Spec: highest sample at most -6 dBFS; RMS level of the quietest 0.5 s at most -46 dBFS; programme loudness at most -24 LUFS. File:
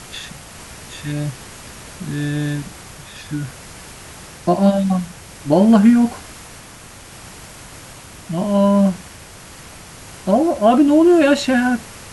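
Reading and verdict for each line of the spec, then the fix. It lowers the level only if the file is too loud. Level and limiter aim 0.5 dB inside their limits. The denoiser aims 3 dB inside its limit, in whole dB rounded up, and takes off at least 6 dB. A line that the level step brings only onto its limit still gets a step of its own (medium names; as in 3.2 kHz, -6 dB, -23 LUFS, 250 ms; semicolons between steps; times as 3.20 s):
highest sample -2.5 dBFS: fail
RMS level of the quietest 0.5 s -39 dBFS: fail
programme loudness -16.5 LUFS: fail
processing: trim -8 dB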